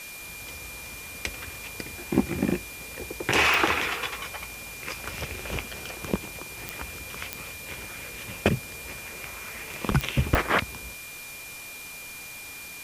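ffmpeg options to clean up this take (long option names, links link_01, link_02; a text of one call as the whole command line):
ffmpeg -i in.wav -af "adeclick=threshold=4,bandreject=frequency=2400:width=30,afwtdn=0.0079" out.wav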